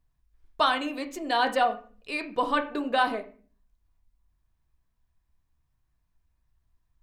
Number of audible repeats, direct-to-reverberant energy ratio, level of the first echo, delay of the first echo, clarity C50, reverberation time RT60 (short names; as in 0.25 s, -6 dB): none, 5.5 dB, none, none, 13.5 dB, 0.40 s